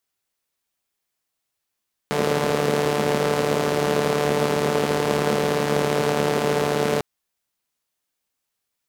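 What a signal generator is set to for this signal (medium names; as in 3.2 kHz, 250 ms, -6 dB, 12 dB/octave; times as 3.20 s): four-cylinder engine model, steady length 4.90 s, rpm 4400, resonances 220/420 Hz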